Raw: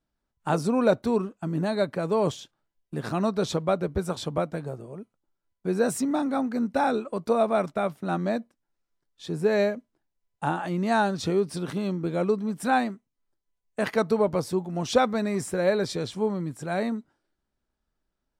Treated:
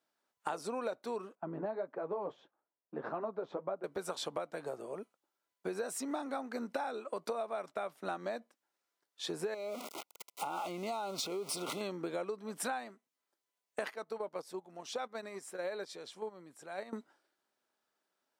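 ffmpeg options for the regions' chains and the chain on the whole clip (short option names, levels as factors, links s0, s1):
-filter_complex "[0:a]asettb=1/sr,asplit=3[s0][s1][s2];[s0]atrim=end=1.354[s3];[s1]atrim=start=1.35:end=3.84,asetpts=PTS-STARTPTS,afade=t=in:d=0.004:c=qsin,afade=t=out:st=2.486:d=0.004:c=qsin,lowpass=1100,flanger=delay=2.3:depth=8.1:regen=-32:speed=1.6:shape=triangular[s4];[s2]atrim=start=3.836[s5];[s3][s4]acrossfade=d=0.004:c1=hsin:c2=qsin[s6];[s6][s5]acrossfade=d=0.004:c1=qsin:c2=hsin,asettb=1/sr,asplit=3[s7][s8][s9];[s7]atrim=end=9.544[s10];[s8]atrim=start=9.54:end=11.81,asetpts=PTS-STARTPTS,afade=t=in:d=0.004:c=qsin,afade=t=out:st=2.266:d=0.004:c=qsin,aeval=exprs='val(0)+0.5*0.0158*sgn(val(0))':c=same,acompressor=threshold=0.0355:ratio=5:attack=3.2:release=140:knee=1:detection=peak,asuperstop=centerf=1700:order=12:qfactor=3[s11];[s9]atrim=start=11.806[s12];[s10][s11]acrossfade=d=0.004:c1=hsin:c2=qsin[s13];[s13][s12]acrossfade=d=0.004:c1=qsin:c2=hsin,asettb=1/sr,asplit=3[s14][s15][s16];[s14]atrim=end=13.934[s17];[s15]atrim=start=13.93:end=16.93,asetpts=PTS-STARTPTS,afade=t=in:d=0.004:c=qsin,afade=t=out:st=2.996:d=0.004:c=qsin,agate=range=0.2:threshold=0.0501:ratio=16:release=100:detection=peak,acompressor=threshold=0.00631:ratio=2:attack=3.2:release=140:knee=1:detection=peak[s18];[s16]atrim=start=16.926[s19];[s17][s18]acrossfade=d=0.004:c1=hsin:c2=qsin[s20];[s20][s19]acrossfade=d=0.004:c1=qsin:c2=hsin,highpass=460,acompressor=threshold=0.0126:ratio=12,volume=1.5"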